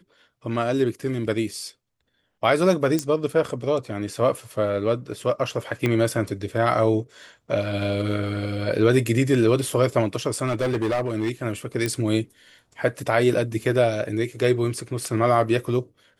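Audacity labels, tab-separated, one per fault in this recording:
2.990000	2.990000	click −11 dBFS
5.860000	5.860000	click −10 dBFS
10.460000	11.310000	clipping −19 dBFS
11.860000	11.860000	click −11 dBFS

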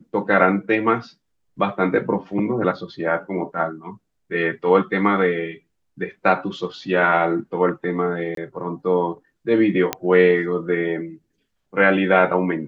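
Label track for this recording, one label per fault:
8.350000	8.370000	drop-out 23 ms
9.930000	9.930000	click −5 dBFS

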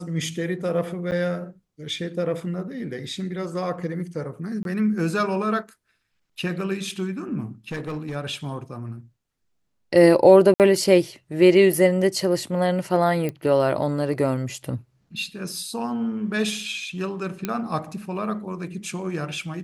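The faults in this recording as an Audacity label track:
1.110000	1.120000	drop-out 9.3 ms
4.630000	4.650000	drop-out 22 ms
7.710000	8.160000	clipping −25.5 dBFS
10.540000	10.600000	drop-out 58 ms
13.290000	13.290000	click −16 dBFS
17.450000	17.450000	click −11 dBFS

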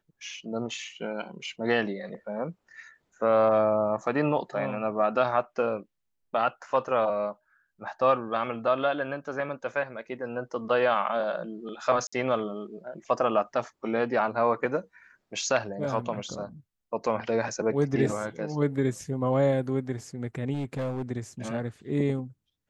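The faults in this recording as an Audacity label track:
12.070000	12.120000	drop-out 55 ms
20.530000	21.020000	clipping −27 dBFS

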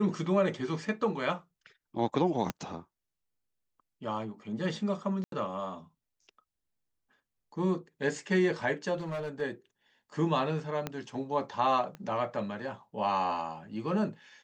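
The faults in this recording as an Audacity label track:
2.500000	2.500000	click −16 dBFS
5.240000	5.320000	drop-out 82 ms
8.970000	9.420000	clipping −32 dBFS
10.870000	10.870000	click −18 dBFS
11.950000	11.950000	click −29 dBFS

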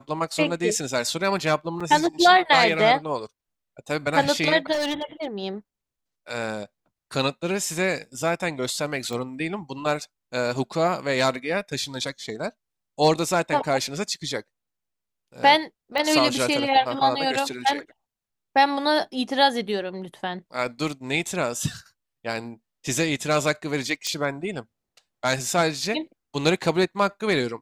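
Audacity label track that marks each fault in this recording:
1.800000	1.810000	drop-out 5.2 ms
4.720000	5.260000	clipping −22 dBFS
9.130000	9.130000	click −19 dBFS
15.980000	15.980000	click −13 dBFS
24.070000	24.070000	click −13 dBFS

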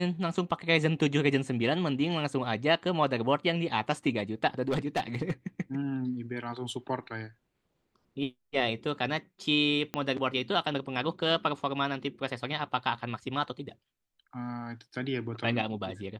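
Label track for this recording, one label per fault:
4.680000	5.320000	clipping −24 dBFS
9.940000	9.940000	click −17 dBFS

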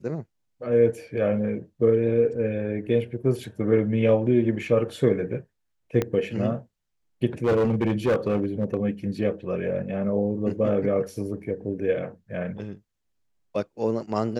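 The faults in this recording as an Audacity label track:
6.020000	6.020000	click −12 dBFS
7.440000	8.770000	clipping −17.5 dBFS

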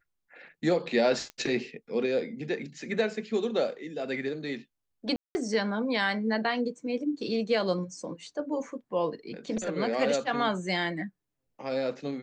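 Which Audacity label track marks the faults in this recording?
1.300000	1.300000	click −25 dBFS
5.160000	5.350000	drop-out 190 ms

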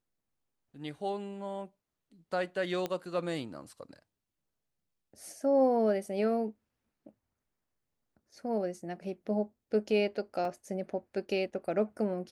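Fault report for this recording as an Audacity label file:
2.860000	2.860000	click −20 dBFS
10.450000	10.450000	drop-out 2.3 ms

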